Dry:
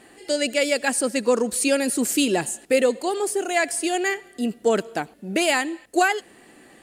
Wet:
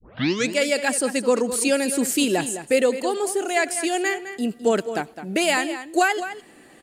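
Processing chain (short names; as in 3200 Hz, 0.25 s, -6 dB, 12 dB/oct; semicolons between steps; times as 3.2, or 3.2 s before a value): tape start at the beginning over 0.51 s; outdoor echo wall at 36 m, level -11 dB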